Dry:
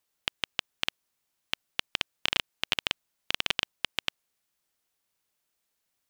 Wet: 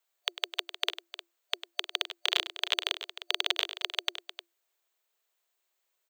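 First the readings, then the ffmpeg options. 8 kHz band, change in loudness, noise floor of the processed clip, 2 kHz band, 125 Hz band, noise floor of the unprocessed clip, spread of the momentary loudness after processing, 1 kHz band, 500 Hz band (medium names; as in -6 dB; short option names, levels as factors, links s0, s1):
-0.5 dB, +0.5 dB, -80 dBFS, -2.0 dB, under -40 dB, -80 dBFS, 15 LU, 0.0 dB, +1.5 dB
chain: -af "superequalizer=6b=1.58:14b=0.631:16b=0.398,afreqshift=340,aecho=1:1:100|307:0.224|0.224"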